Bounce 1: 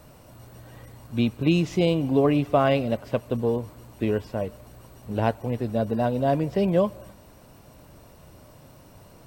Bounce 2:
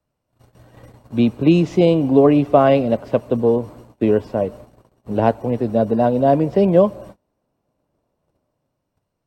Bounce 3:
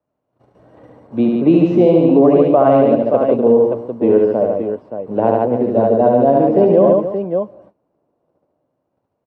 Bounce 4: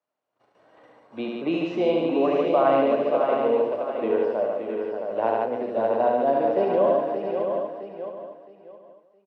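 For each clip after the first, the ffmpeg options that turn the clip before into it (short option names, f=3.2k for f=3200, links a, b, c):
-filter_complex "[0:a]agate=range=-28dB:threshold=-44dB:ratio=16:detection=peak,highshelf=f=11k:g=-10.5,acrossover=split=180|1000[a][b][c];[b]dynaudnorm=f=150:g=11:m=8.5dB[d];[a][d][c]amix=inputs=3:normalize=0,volume=1.5dB"
-filter_complex "[0:a]bandpass=f=490:t=q:w=0.66:csg=0,asplit=2[a][b];[b]aecho=0:1:73|146|280|575:0.668|0.631|0.2|0.398[c];[a][c]amix=inputs=2:normalize=0,alimiter=level_in=4dB:limit=-1dB:release=50:level=0:latency=1,volume=-1dB"
-filter_complex "[0:a]bandpass=f=2.9k:t=q:w=0.57:csg=0,asplit=2[a][b];[b]adelay=36,volume=-11.5dB[c];[a][c]amix=inputs=2:normalize=0,aecho=1:1:665|1330|1995:0.501|0.135|0.0365"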